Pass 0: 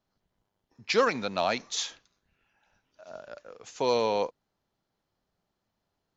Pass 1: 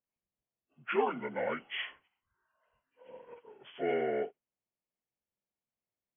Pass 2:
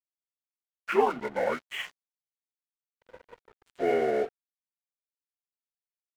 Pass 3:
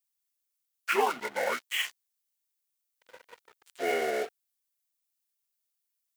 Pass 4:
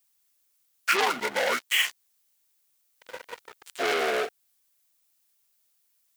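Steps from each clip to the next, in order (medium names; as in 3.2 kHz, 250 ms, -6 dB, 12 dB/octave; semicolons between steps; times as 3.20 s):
frequency axis rescaled in octaves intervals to 77%; spectral noise reduction 11 dB; trim -5 dB
peaking EQ 660 Hz +5 dB 3 oct; crossover distortion -45 dBFS; trim +2.5 dB
tilt EQ +4 dB/octave
in parallel at +3 dB: compression, threshold -37 dBFS, peak gain reduction 15 dB; on the sum: transformer saturation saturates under 3.5 kHz; trim +4.5 dB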